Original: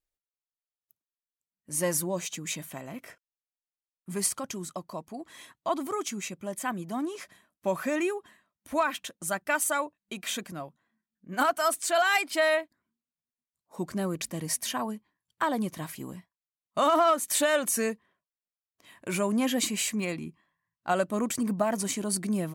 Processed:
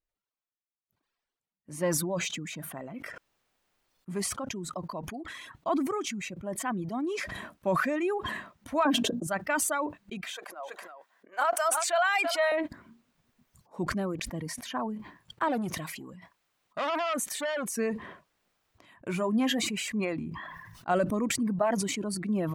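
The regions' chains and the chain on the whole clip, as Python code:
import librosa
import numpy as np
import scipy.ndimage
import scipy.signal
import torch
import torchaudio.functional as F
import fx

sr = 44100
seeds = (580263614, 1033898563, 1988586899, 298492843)

y = fx.chain(x, sr, fx.peak_eq(hz=1900.0, db=-14.5, octaves=0.63),
    fx.hum_notches(base_hz=60, count=4),
    fx.small_body(hz=(290.0, 430.0, 620.0, 1600.0), ring_ms=30, db=16), at=(8.85, 9.27))
y = fx.chain(y, sr, fx.highpass(hz=540.0, slope=24),
    fx.echo_single(ms=328, db=-18.5), at=(10.3, 12.52))
y = fx.chain(y, sr, fx.low_shelf(hz=380.0, db=-7.0),
    fx.transformer_sat(knee_hz=2600.0), at=(15.48, 17.77))
y = fx.chain(y, sr, fx.peak_eq(hz=530.0, db=-5.0, octaves=0.4),
    fx.doubler(ms=23.0, db=-10.5), at=(19.11, 19.64))
y = fx.chain(y, sr, fx.notch(hz=560.0, q=14.0),
    fx.sustainer(db_per_s=38.0), at=(20.28, 20.91))
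y = fx.dereverb_blind(y, sr, rt60_s=1.2)
y = fx.lowpass(y, sr, hz=1800.0, slope=6)
y = fx.sustainer(y, sr, db_per_s=31.0)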